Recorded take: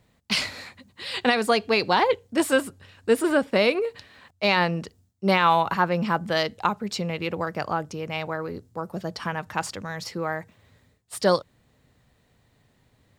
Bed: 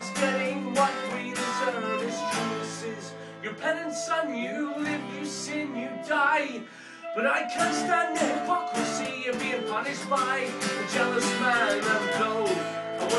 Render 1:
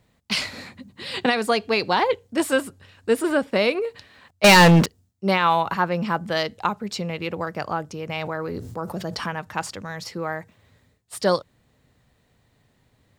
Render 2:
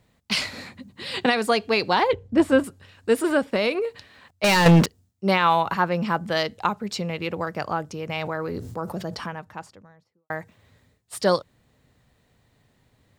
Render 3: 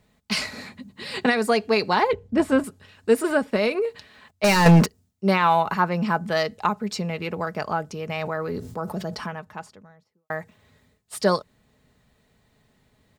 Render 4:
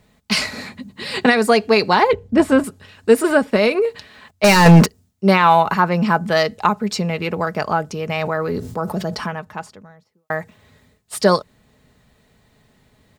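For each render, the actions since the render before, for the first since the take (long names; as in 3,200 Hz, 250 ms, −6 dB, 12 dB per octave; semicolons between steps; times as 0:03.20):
0:00.53–0:01.26: parametric band 200 Hz +11 dB 2 octaves; 0:04.44–0:04.86: leveller curve on the samples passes 5; 0:08.09–0:09.26: envelope flattener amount 70%
0:02.13–0:02.64: RIAA equalisation playback; 0:03.44–0:04.66: downward compressor, threshold −17 dBFS; 0:08.69–0:10.30: fade out and dull
comb filter 4.7 ms, depth 35%; dynamic equaliser 3,300 Hz, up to −7 dB, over −44 dBFS, Q 3.2
level +6.5 dB; brickwall limiter −2 dBFS, peak gain reduction 2.5 dB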